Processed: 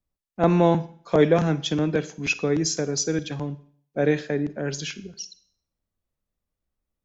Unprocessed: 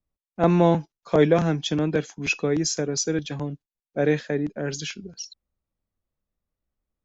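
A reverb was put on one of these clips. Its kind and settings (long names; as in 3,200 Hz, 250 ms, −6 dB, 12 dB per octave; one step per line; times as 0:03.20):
four-comb reverb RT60 0.55 s, DRR 15.5 dB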